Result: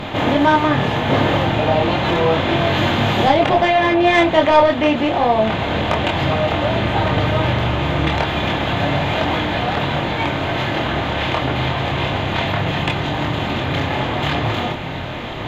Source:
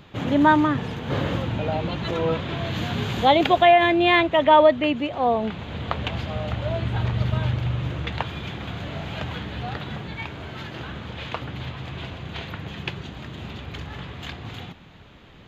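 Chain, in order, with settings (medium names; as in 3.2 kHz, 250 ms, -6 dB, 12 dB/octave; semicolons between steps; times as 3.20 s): spectral levelling over time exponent 0.6; 3.28–4.15 s: treble shelf 4.3 kHz -10.5 dB; in parallel at -3 dB: compression, threshold -23 dBFS, peak gain reduction 13.5 dB; on the sum: saturation -6.5 dBFS, distortion -19 dB; chorus voices 6, 0.29 Hz, delay 25 ms, depth 4.7 ms; trim +4 dB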